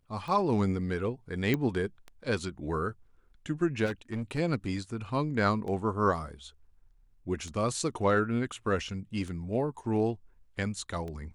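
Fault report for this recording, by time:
scratch tick 33 1/3 rpm
0:01.54: click −15 dBFS
0:03.85–0:04.39: clipping −29 dBFS

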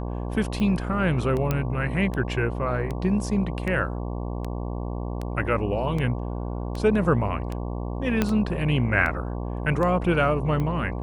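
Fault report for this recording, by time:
mains buzz 60 Hz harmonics 19 −30 dBFS
scratch tick 78 rpm −18 dBFS
0:01.51: click −11 dBFS
0:08.22: click −8 dBFS

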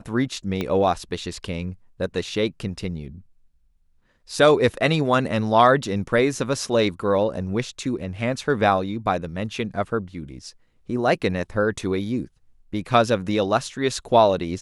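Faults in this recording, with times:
0:00.61: click −13 dBFS

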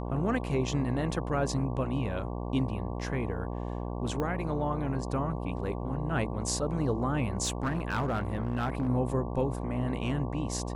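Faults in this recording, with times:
mains buzz 60 Hz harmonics 19 −35 dBFS
0:04.20: click −20 dBFS
0:07.44–0:08.89: clipping −25 dBFS

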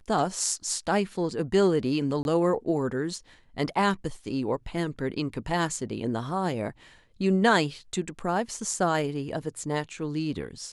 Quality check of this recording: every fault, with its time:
0:02.23–0:02.25: drop-out 21 ms

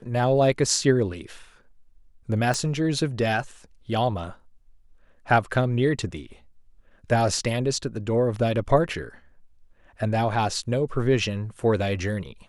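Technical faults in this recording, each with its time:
0:02.54: click −13 dBFS

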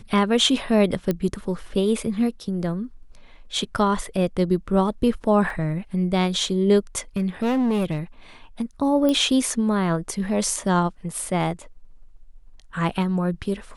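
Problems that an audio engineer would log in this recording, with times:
0:01.11: click −11 dBFS
0:05.50: drop-out 2.3 ms
0:07.16–0:07.99: clipping −18 dBFS
0:09.09: click −11 dBFS

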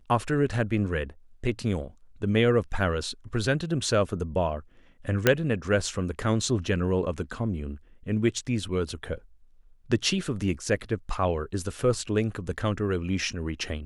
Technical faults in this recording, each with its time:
0:05.27: click −4 dBFS

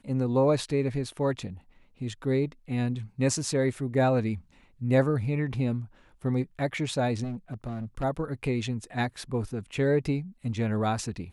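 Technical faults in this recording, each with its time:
0:07.23–0:08.04: clipping −29.5 dBFS

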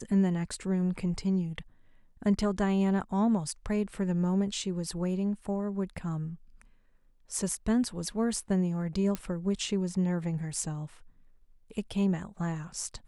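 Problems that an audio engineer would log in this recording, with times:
0:09.15: click −18 dBFS

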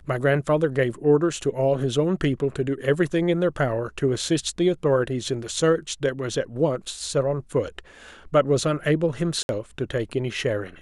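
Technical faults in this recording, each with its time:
0:09.43–0:09.49: drop-out 61 ms

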